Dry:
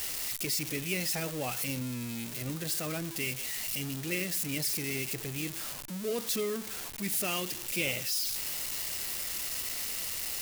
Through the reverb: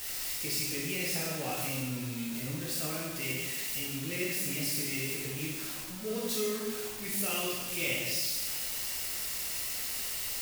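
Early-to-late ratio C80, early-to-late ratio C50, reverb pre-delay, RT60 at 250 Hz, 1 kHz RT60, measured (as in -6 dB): 2.0 dB, 0.0 dB, 6 ms, 1.4 s, 1.4 s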